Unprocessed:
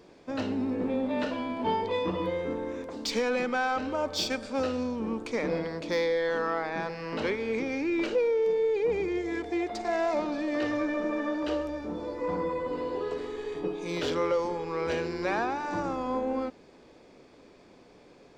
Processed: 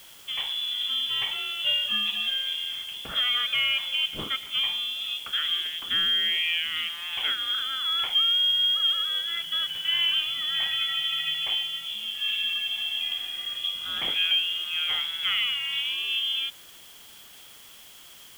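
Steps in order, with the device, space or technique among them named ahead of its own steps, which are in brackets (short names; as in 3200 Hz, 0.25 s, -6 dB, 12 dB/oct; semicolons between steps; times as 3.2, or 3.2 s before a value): scrambled radio voice (BPF 310–2900 Hz; inverted band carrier 3700 Hz; white noise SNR 22 dB); gain +3.5 dB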